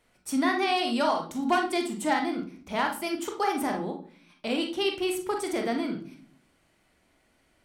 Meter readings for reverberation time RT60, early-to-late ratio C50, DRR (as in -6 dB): 0.45 s, 7.5 dB, 2.5 dB